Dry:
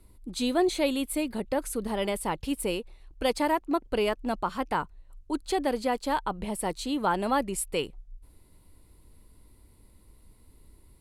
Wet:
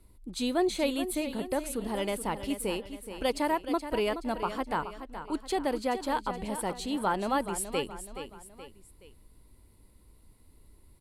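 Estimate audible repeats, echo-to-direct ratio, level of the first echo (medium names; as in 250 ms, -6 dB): 3, -9.5 dB, -10.5 dB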